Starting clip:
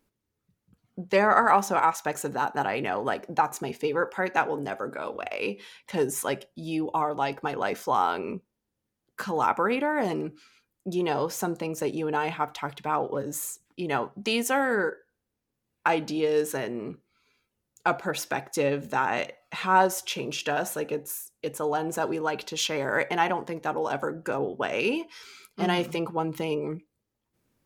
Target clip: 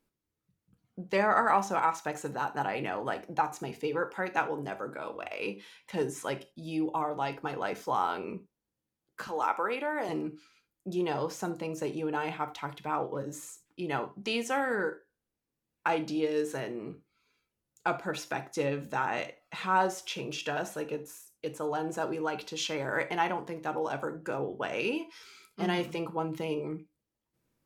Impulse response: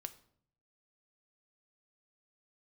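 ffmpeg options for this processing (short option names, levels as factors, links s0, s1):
-filter_complex "[0:a]asettb=1/sr,asplit=3[s0][s1][s2];[s0]atrim=end=9.274[s3];[s1]atrim=start=9.27:end=10.09,asetpts=PTS-STARTPTS,afade=t=in:d=0.004:c=qsin,afade=t=out:st=0.816:d=0.004:c=qsin,highpass=380[s4];[s2]atrim=start=10.086[s5];[s3][s4]acrossfade=d=0.004:c1=hsin:c2=qsin[s6];[s6][s5]acrossfade=d=0.004:c1=qsin:c2=hsin[s7];[1:a]atrim=start_sample=2205,atrim=end_sample=3528,asetrate=37485,aresample=44100[s8];[s7][s8]afir=irnorm=-1:irlink=0,acrossover=split=7600[s9][s10];[s10]acompressor=threshold=0.00251:ratio=4:attack=1:release=60[s11];[s9][s11]amix=inputs=2:normalize=0,volume=0.794"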